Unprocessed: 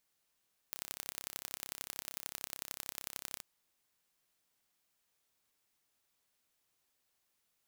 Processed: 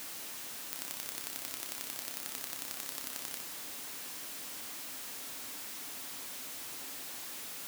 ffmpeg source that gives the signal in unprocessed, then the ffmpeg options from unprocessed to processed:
-f lavfi -i "aevalsrc='0.266*eq(mod(n,1324),0)*(0.5+0.5*eq(mod(n,3972),0))':duration=2.68:sample_rate=44100"
-af "aeval=exprs='val(0)+0.5*0.0141*sgn(val(0))':channel_layout=same,highpass=frequency=160:poles=1,equalizer=frequency=270:width=4.8:gain=8"

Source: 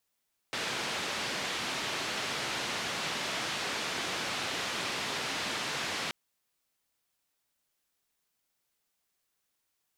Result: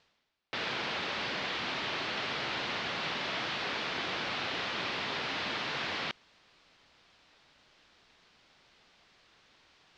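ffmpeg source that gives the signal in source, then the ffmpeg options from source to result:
-f lavfi -i "anoisesrc=color=white:duration=5.58:sample_rate=44100:seed=1,highpass=frequency=120,lowpass=frequency=3900,volume=-22.4dB"
-af "areverse,acompressor=mode=upward:threshold=-38dB:ratio=2.5,areverse,lowpass=frequency=4500:width=0.5412,lowpass=frequency=4500:width=1.3066"

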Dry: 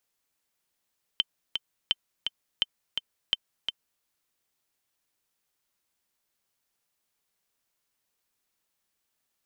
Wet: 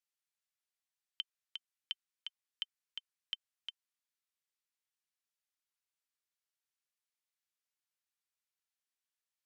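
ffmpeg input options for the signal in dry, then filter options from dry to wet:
-f lavfi -i "aevalsrc='pow(10,(-10-5.5*gte(mod(t,2*60/169),60/169))/20)*sin(2*PI*3090*mod(t,60/169))*exp(-6.91*mod(t,60/169)/0.03)':duration=2.84:sample_rate=44100"
-af "bandpass=frequency=1300:width_type=q:width=0.75:csg=0,aderivative"

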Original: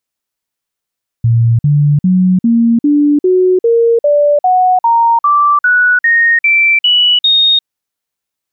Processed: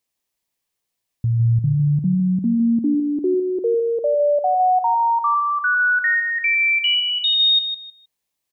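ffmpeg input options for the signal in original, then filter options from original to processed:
-f lavfi -i "aevalsrc='0.501*clip(min(mod(t,0.4),0.35-mod(t,0.4))/0.005,0,1)*sin(2*PI*116*pow(2,floor(t/0.4)/3)*mod(t,0.4))':duration=6.4:sample_rate=44100"
-af "equalizer=frequency=1400:width_type=o:width=0.24:gain=-10.5,alimiter=limit=-15dB:level=0:latency=1:release=80,aecho=1:1:156|312|468:0.398|0.0916|0.0211"

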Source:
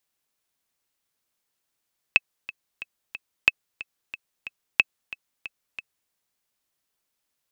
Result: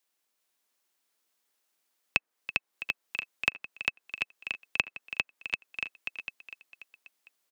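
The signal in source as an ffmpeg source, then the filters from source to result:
-f lavfi -i "aevalsrc='pow(10,(-2-18.5*gte(mod(t,4*60/182),60/182))/20)*sin(2*PI*2600*mod(t,60/182))*exp(-6.91*mod(t,60/182)/0.03)':duration=3.95:sample_rate=44100"
-filter_complex "[0:a]aecho=1:1:400|740|1029|1275|1483:0.631|0.398|0.251|0.158|0.1,acrossover=split=190|830|2100[link_01][link_02][link_03][link_04];[link_01]aeval=exprs='val(0)*gte(abs(val(0)),0.00106)':channel_layout=same[link_05];[link_04]acompressor=threshold=-33dB:ratio=6[link_06];[link_05][link_02][link_03][link_06]amix=inputs=4:normalize=0"

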